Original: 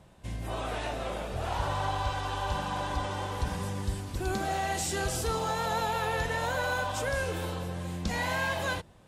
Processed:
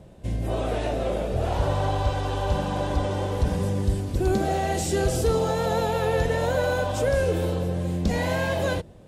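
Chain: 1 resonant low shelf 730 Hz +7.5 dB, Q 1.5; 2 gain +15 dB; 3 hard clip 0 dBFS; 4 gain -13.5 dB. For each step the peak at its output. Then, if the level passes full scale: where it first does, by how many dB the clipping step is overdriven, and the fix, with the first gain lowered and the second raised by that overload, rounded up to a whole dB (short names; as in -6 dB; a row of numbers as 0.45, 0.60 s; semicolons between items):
-11.0, +4.0, 0.0, -13.5 dBFS; step 2, 4.0 dB; step 2 +11 dB, step 4 -9.5 dB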